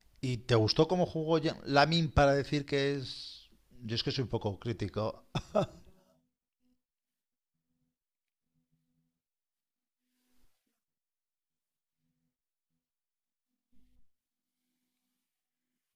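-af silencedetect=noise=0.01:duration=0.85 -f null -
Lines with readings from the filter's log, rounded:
silence_start: 5.66
silence_end: 15.96 | silence_duration: 10.30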